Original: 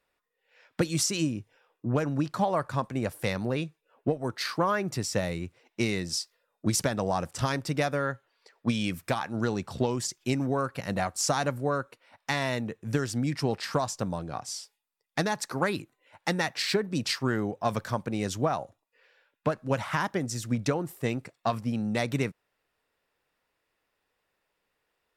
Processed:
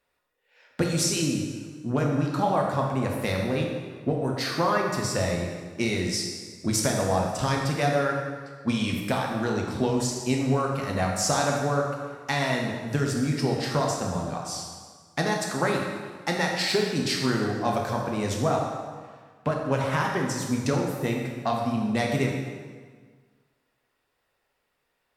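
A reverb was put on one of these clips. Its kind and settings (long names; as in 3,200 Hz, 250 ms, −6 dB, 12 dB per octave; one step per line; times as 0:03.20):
dense smooth reverb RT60 1.6 s, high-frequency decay 0.8×, DRR −0.5 dB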